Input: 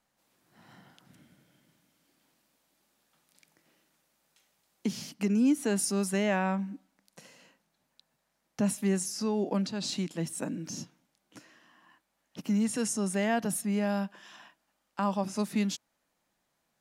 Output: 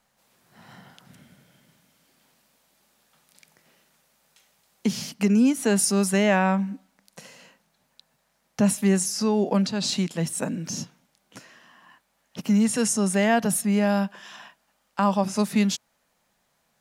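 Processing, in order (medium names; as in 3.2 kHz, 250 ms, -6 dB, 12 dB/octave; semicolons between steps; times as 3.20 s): peaking EQ 310 Hz -12 dB 0.23 oct; trim +8 dB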